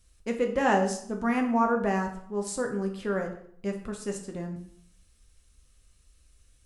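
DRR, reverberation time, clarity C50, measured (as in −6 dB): 2.5 dB, 0.65 s, 9.0 dB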